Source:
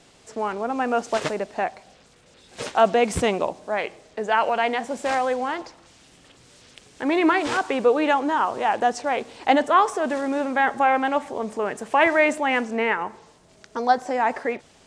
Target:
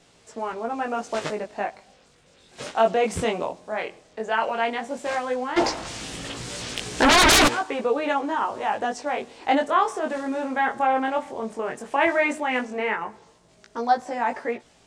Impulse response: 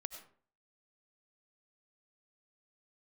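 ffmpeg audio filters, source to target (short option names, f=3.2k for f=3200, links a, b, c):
-filter_complex "[0:a]flanger=delay=17:depth=6:speed=0.14,asplit=3[a][b][c];[a]afade=t=out:st=5.56:d=0.02[d];[b]aeval=exprs='0.251*sin(PI/2*7.08*val(0)/0.251)':c=same,afade=t=in:st=5.56:d=0.02,afade=t=out:st=7.47:d=0.02[e];[c]afade=t=in:st=7.47:d=0.02[f];[d][e][f]amix=inputs=3:normalize=0"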